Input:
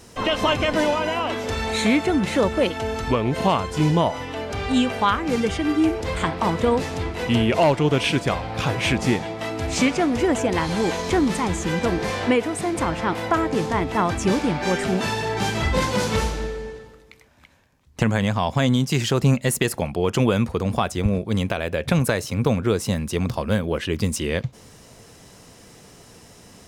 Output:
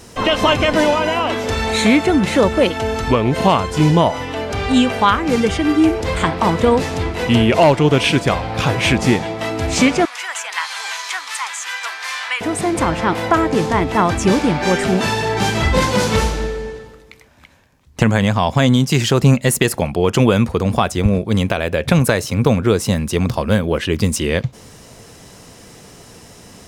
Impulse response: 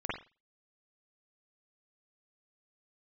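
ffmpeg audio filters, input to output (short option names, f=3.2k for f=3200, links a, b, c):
-filter_complex "[0:a]asettb=1/sr,asplit=3[a][b][c];[a]atrim=end=10.054[d];[b]atrim=start=10.05:end=12.41,asetpts=PTS-STARTPTS,afade=t=in:d=0.004:c=qsin,afade=t=out:st=2.356:d=0.004:c=qsin,highpass=f=1.1k:w=0.5412,highpass=f=1.1k:w=1.3066[e];[c]atrim=start=12.406[f];[d][e]acrossfade=d=0.004:c1=hsin:c2=qsin[g];[g][f]acrossfade=d=0.004:c1=qsin:c2=hsin,volume=6dB"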